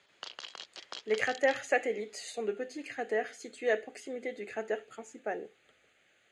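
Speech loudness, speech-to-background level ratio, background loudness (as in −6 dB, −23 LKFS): −34.5 LKFS, 10.5 dB, −45.0 LKFS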